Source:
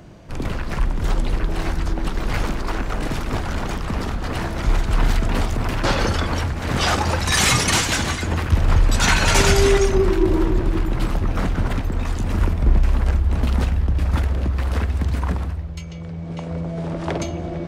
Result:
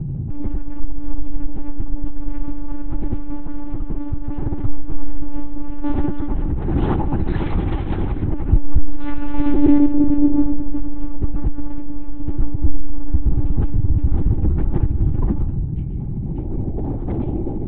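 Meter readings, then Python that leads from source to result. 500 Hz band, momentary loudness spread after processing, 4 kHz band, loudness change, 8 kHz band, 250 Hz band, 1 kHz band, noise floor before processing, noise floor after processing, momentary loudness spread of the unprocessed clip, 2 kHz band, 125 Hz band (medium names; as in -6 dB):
-8.0 dB, 13 LU, under -25 dB, -2.0 dB, under -40 dB, +4.5 dB, -9.5 dB, -30 dBFS, -24 dBFS, 11 LU, -19.0 dB, -1.0 dB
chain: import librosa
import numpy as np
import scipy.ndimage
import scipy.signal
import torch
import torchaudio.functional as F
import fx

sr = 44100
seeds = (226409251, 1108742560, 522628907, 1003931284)

y = fx.tilt_eq(x, sr, slope=-4.5)
y = fx.dmg_buzz(y, sr, base_hz=60.0, harmonics=3, level_db=-12.0, tilt_db=-3, odd_only=False)
y = fx.lpc_monotone(y, sr, seeds[0], pitch_hz=290.0, order=8)
y = fx.small_body(y, sr, hz=(330.0, 810.0), ring_ms=25, db=11)
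y = F.gain(torch.from_numpy(y), -13.5).numpy()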